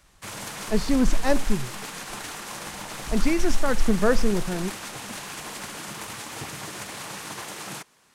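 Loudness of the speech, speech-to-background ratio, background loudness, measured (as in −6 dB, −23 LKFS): −26.0 LKFS, 9.0 dB, −35.0 LKFS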